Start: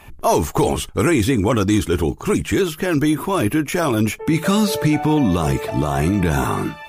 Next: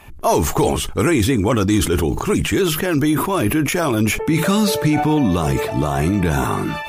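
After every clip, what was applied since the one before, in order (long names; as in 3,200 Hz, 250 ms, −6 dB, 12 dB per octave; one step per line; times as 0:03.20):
level that may fall only so fast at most 46 dB per second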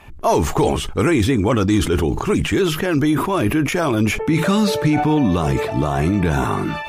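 high-shelf EQ 8,600 Hz −12 dB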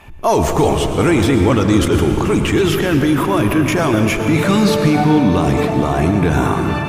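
convolution reverb RT60 3.7 s, pre-delay 95 ms, DRR 5 dB
level +2 dB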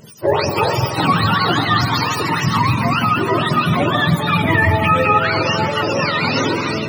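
frequency axis turned over on the octave scale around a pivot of 620 Hz
level +1 dB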